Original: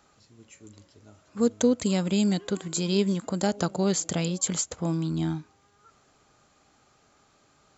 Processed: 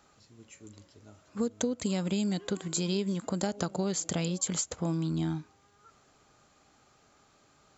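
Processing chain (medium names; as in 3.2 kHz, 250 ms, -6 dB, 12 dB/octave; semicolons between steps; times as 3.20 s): compression 12:1, threshold -25 dBFS, peak gain reduction 9.5 dB; trim -1 dB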